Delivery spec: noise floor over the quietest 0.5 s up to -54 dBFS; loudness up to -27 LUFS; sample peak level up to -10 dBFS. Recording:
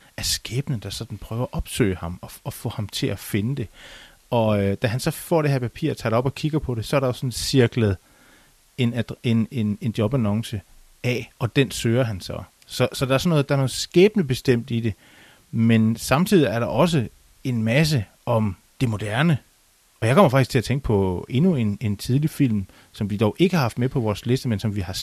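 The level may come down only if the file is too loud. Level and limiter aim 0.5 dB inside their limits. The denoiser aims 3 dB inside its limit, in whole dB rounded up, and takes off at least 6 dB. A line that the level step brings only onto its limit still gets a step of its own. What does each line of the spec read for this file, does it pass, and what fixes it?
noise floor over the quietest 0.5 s -59 dBFS: OK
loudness -22.5 LUFS: fail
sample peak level -2.0 dBFS: fail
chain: gain -5 dB; limiter -10.5 dBFS

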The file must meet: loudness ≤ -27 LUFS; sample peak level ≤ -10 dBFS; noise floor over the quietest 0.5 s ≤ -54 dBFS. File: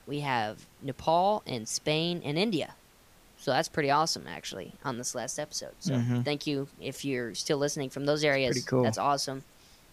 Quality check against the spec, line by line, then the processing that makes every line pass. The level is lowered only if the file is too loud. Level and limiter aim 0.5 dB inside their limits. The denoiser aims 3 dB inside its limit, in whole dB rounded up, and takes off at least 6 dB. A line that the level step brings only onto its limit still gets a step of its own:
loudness -30.0 LUFS: OK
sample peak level -12.5 dBFS: OK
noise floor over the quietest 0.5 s -59 dBFS: OK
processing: none

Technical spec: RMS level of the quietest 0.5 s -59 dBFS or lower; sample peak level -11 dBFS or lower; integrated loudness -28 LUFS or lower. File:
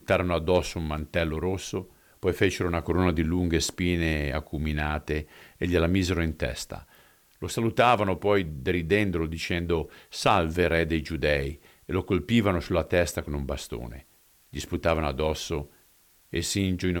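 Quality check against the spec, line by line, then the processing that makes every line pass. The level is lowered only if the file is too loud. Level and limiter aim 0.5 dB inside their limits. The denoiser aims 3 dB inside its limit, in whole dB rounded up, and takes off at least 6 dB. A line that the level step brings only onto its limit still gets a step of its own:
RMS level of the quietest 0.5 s -61 dBFS: OK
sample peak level -9.5 dBFS: fail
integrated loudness -27.0 LUFS: fail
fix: gain -1.5 dB; limiter -11.5 dBFS

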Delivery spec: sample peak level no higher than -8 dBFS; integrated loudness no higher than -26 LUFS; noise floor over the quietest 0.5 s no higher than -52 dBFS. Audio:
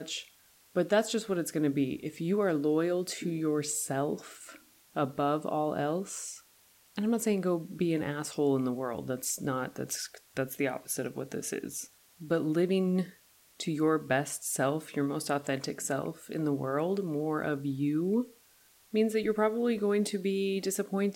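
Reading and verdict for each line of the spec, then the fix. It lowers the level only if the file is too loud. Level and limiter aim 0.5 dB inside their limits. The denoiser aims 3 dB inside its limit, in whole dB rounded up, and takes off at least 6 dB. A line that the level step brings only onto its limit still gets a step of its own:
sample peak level -14.5 dBFS: OK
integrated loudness -31.5 LUFS: OK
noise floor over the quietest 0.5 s -63 dBFS: OK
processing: none

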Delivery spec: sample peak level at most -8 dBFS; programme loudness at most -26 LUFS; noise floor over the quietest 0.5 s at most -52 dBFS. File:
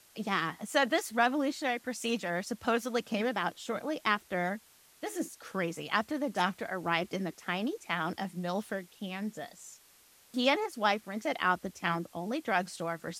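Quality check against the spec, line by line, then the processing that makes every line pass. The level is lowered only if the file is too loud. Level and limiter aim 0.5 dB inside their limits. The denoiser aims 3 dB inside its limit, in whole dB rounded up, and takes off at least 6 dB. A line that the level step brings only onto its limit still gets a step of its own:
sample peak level -12.0 dBFS: OK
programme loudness -32.5 LUFS: OK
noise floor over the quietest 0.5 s -61 dBFS: OK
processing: none

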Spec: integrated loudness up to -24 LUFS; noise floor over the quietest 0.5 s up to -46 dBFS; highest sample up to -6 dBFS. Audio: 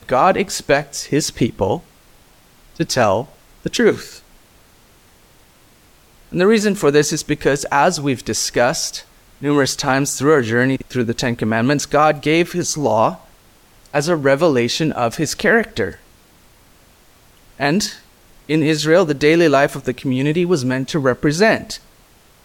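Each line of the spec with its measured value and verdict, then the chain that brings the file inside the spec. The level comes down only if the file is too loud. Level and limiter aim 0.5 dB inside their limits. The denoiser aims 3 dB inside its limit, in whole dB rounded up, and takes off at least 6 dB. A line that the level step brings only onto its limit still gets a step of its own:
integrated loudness -17.0 LUFS: fail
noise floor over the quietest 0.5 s -50 dBFS: OK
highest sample -2.5 dBFS: fail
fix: gain -7.5 dB

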